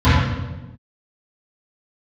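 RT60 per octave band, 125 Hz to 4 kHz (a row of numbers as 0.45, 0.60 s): 1.3, 1.4, 1.2, 1.0, 0.90, 0.85 s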